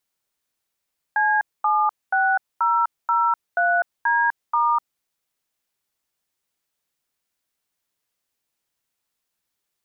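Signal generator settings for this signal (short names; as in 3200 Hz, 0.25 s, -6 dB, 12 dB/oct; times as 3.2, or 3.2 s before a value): DTMF "C76003D*", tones 0.251 s, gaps 0.231 s, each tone -19 dBFS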